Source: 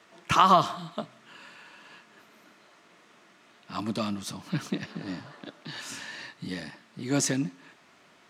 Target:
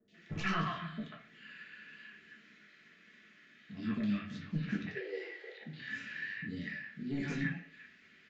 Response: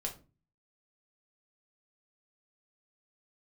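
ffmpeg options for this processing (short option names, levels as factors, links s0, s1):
-filter_complex "[0:a]firequalizer=gain_entry='entry(260,0);entry(540,-10);entry(920,-18);entry(1700,9);entry(6000,-6)':delay=0.05:min_phase=1,acrossover=split=2800[s0][s1];[s1]acompressor=threshold=0.00141:ratio=4[s2];[s0][s2]amix=inputs=2:normalize=0,flanger=delay=9.6:depth=8.5:regen=-80:speed=0.62:shape=sinusoidal,asettb=1/sr,asplit=3[s3][s4][s5];[s3]atrim=end=4.874[s6];[s4]atrim=start=4.87:end=5.61,asetpts=PTS-STARTPTS,afade=t=in:d=0.004:c=qsin,afade=t=out:st=0.736:d=0.004:c=qsin,afreqshift=210[s7];[s5]atrim=start=5.606[s8];[s6][s7]acrossfade=d=0.004:c1=hsin:c2=qsin[s9];[s9][s8]acrossfade=d=0.004:c1=qsin:c2=hsin,asoftclip=type=tanh:threshold=0.0531,acrossover=split=680|3000[s10][s11][s12];[s12]adelay=80[s13];[s11]adelay=140[s14];[s10][s14][s13]amix=inputs=3:normalize=0[s15];[1:a]atrim=start_sample=2205,afade=t=out:st=0.2:d=0.01,atrim=end_sample=9261[s16];[s15][s16]afir=irnorm=-1:irlink=0,aresample=16000,aresample=44100"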